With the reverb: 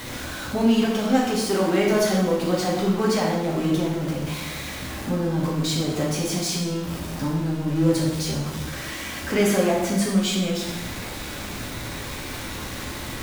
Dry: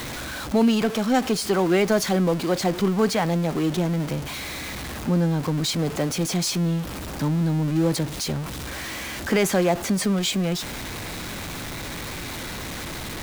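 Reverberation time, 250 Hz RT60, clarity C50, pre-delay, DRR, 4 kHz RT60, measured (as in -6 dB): 1.1 s, 1.2 s, 2.5 dB, 5 ms, -3.5 dB, 0.85 s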